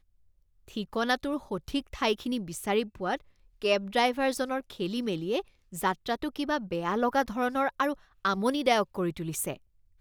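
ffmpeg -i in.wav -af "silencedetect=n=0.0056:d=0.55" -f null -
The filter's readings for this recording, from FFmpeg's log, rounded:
silence_start: 0.00
silence_end: 0.68 | silence_duration: 0.68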